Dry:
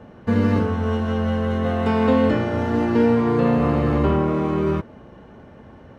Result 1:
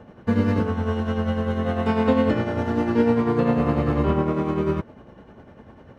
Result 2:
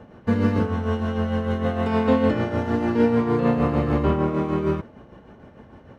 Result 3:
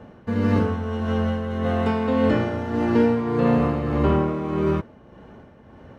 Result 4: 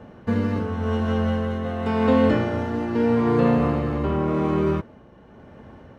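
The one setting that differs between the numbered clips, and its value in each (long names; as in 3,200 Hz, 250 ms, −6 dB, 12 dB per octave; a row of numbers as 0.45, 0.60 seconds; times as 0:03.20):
amplitude tremolo, speed: 10, 6.6, 1.7, 0.88 Hertz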